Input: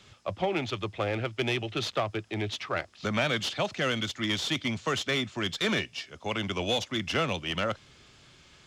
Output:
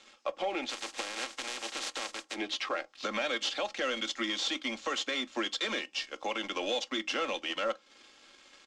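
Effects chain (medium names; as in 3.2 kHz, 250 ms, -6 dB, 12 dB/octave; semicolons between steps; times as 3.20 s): 0.69–2.34 s: spectral contrast reduction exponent 0.23; high-pass 300 Hz 24 dB/octave; compression 3:1, threshold -38 dBFS, peak gain reduction 11.5 dB; waveshaping leveller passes 2; peak limiter -22.5 dBFS, peak gain reduction 7.5 dB; low-pass 8 kHz 24 dB/octave; comb 3.7 ms, depth 53%; on a send: reverberation RT60 0.25 s, pre-delay 8 ms, DRR 16 dB; on the sum: trim -1.5 dB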